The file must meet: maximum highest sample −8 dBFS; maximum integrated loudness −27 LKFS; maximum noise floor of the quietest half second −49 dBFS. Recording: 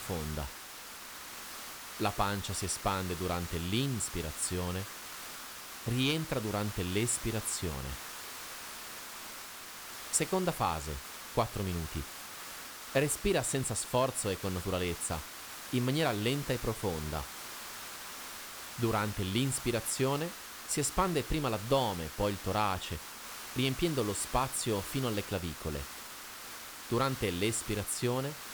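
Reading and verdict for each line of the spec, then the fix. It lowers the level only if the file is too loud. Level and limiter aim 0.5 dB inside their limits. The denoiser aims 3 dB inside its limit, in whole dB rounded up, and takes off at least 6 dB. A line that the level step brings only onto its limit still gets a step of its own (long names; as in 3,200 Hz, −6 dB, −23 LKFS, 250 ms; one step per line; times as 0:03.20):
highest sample −15.0 dBFS: in spec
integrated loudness −34.0 LKFS: in spec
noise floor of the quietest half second −47 dBFS: out of spec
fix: broadband denoise 6 dB, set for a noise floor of −47 dBFS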